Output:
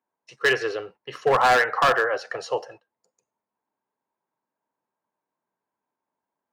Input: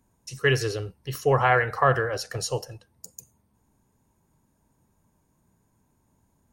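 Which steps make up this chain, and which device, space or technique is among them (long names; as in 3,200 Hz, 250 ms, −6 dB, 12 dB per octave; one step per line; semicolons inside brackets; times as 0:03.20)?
walkie-talkie (band-pass filter 540–2,300 Hz; hard clipping −21.5 dBFS, distortion −9 dB; noise gate −53 dBFS, range −16 dB)
level +7.5 dB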